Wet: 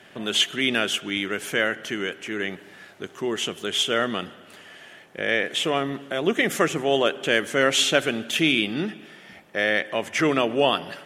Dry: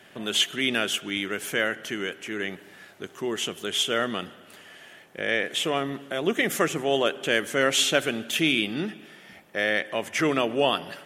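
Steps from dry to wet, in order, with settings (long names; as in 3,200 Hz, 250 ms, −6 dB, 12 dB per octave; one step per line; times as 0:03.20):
high-shelf EQ 12,000 Hz −11 dB
level +2.5 dB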